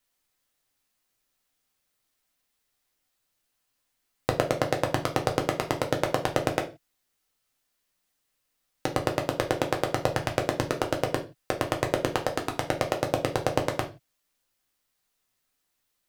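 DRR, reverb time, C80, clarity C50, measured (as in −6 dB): 2.0 dB, non-exponential decay, 19.5 dB, 13.0 dB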